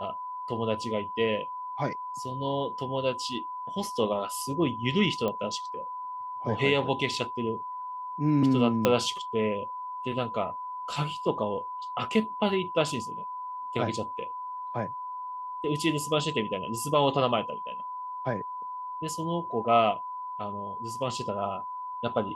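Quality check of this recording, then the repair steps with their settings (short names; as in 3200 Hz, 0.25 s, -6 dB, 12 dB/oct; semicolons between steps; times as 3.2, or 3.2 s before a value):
tone 1000 Hz -34 dBFS
5.28 pop -18 dBFS
8.85 pop -7 dBFS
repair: de-click; notch 1000 Hz, Q 30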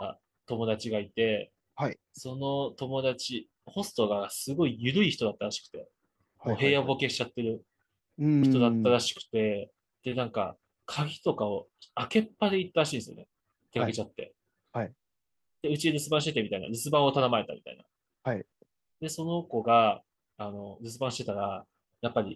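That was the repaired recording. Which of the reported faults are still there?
8.85 pop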